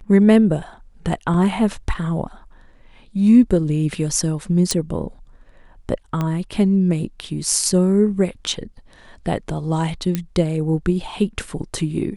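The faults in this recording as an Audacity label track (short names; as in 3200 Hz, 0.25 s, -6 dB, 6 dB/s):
1.340000	1.340000	gap 3.3 ms
4.710000	4.710000	pop -5 dBFS
6.210000	6.210000	pop -11 dBFS
10.150000	10.150000	pop -8 dBFS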